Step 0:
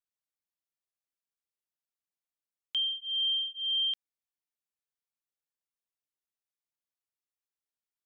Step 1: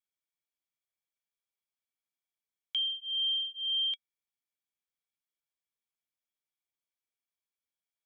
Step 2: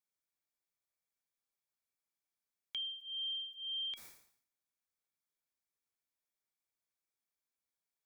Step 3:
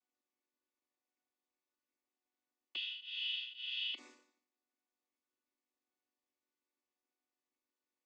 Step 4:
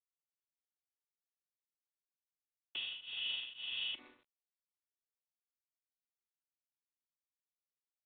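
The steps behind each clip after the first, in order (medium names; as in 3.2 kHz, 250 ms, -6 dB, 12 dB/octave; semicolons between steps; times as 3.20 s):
small resonant body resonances 2.3/3.3 kHz, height 15 dB; trim -3.5 dB
peaking EQ 3 kHz -11.5 dB 0.31 oct; decay stretcher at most 93 dB/s
vocoder on a held chord minor triad, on B3; trim +1.5 dB
G.726 24 kbps 8 kHz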